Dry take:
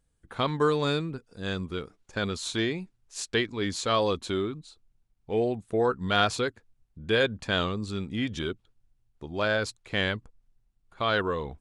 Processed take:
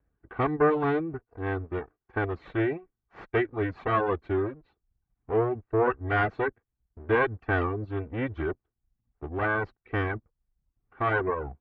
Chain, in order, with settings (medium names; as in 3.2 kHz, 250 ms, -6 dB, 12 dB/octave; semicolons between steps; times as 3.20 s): comb filter that takes the minimum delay 2.6 ms; low-pass 1.9 kHz 24 dB/octave; reverb removal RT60 0.57 s; high-pass 40 Hz; trim +3.5 dB